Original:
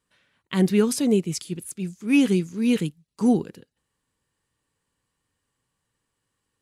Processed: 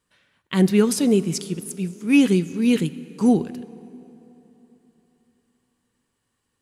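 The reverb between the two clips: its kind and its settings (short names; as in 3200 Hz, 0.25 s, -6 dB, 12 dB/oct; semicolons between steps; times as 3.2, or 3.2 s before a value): plate-style reverb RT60 3.5 s, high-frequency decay 0.7×, DRR 16 dB; gain +2.5 dB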